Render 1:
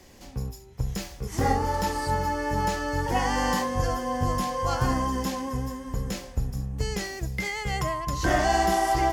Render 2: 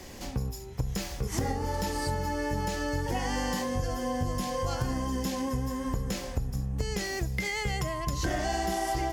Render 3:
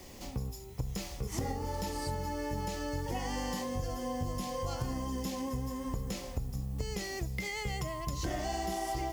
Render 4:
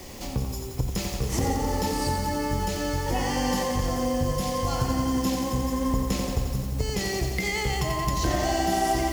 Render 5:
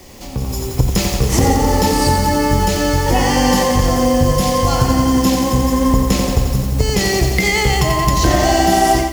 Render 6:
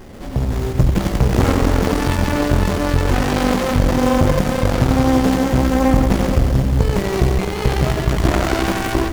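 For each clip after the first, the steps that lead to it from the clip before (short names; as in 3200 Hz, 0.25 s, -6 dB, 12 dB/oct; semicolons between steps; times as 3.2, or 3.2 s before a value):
dynamic EQ 1100 Hz, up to -7 dB, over -39 dBFS, Q 1.1; compressor 5:1, threshold -35 dBFS, peak gain reduction 13.5 dB; gain +7 dB
bell 1600 Hz -8 dB 0.26 oct; added noise blue -57 dBFS; gain -5 dB
lo-fi delay 88 ms, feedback 80%, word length 9-bit, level -6 dB; gain +8.5 dB
AGC gain up to 13 dB; gain +1 dB
tube stage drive 10 dB, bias 0.35; running maximum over 33 samples; gain +5 dB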